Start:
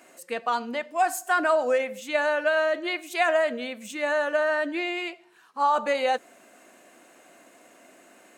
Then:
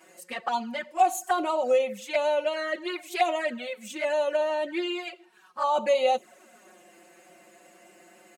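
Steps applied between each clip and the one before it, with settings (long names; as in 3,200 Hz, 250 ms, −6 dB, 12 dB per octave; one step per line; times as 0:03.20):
comb filter 5.4 ms, depth 80%
flanger swept by the level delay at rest 6.5 ms, full sweep at −19.5 dBFS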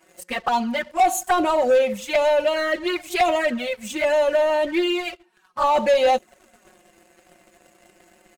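leveller curve on the samples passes 2
low-shelf EQ 130 Hz +11 dB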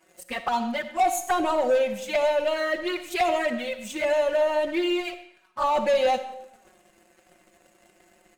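comb and all-pass reverb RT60 0.78 s, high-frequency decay 0.9×, pre-delay 20 ms, DRR 10.5 dB
level −4.5 dB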